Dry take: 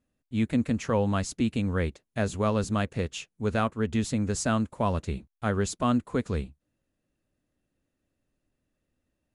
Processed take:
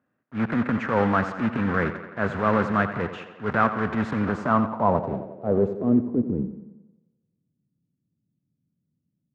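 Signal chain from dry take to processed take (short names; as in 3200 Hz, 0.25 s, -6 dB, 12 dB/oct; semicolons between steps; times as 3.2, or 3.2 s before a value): block floating point 3-bit; HPF 110 Hz 24 dB/oct; transient shaper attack -8 dB, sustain +4 dB; tape echo 88 ms, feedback 68%, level -10.5 dB, low-pass 5400 Hz; low-pass sweep 1500 Hz -> 170 Hz, 4.19–7.06; gain +4 dB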